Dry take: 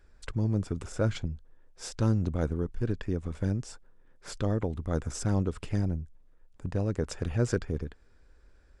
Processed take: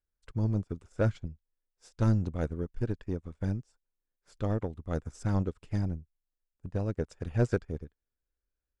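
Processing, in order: soft clip -20 dBFS, distortion -16 dB; upward expander 2.5:1, over -48 dBFS; gain +4.5 dB

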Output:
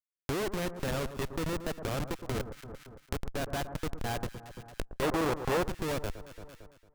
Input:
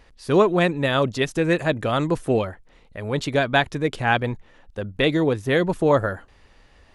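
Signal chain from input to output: 2.05–3.52 HPF 250 Hz 6 dB/oct; Schmitt trigger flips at -19.5 dBFS; on a send: echo with dull and thin repeats by turns 0.113 s, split 1400 Hz, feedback 53%, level -12.5 dB; on the sum: compressor 3:1, threshold -47 dBFS, peak gain reduction 19 dB; 5.02–5.63 bell 840 Hz +8.5 dB 2.2 oct; gain +8.5 dB

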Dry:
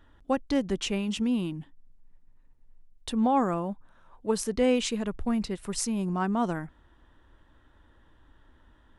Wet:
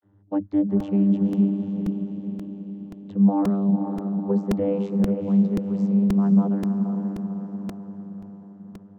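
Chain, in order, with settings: tilt -4 dB/oct; vibrato 0.32 Hz 41 cents; diffused feedback echo 0.497 s, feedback 55%, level -6 dB; vocoder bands 32, saw 99.3 Hz; crackling interface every 0.53 s, samples 128, repeat, from 0.8

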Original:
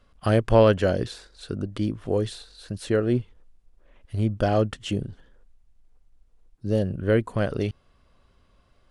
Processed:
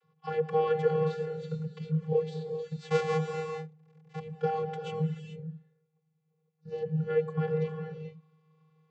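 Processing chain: 2.78–4.19 half-waves squared off; vocoder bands 32, square 157 Hz; non-linear reverb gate 0.46 s rising, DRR 5.5 dB; gain -7 dB

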